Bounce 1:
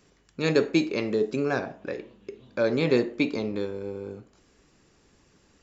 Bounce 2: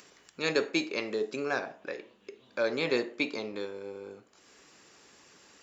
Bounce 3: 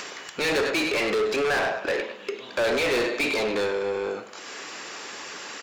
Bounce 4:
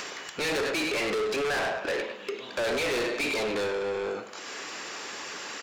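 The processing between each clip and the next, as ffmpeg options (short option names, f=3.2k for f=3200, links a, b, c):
-af "highpass=f=770:p=1,acompressor=mode=upward:threshold=-48dB:ratio=2.5"
-filter_complex "[0:a]aecho=1:1:102|204|306:0.158|0.0539|0.0183,asplit=2[a][b];[b]highpass=f=720:p=1,volume=33dB,asoftclip=type=tanh:threshold=-13dB[c];[a][c]amix=inputs=2:normalize=0,lowpass=f=3.5k:p=1,volume=-6dB,volume=-3dB"
-af "asoftclip=type=tanh:threshold=-25.5dB"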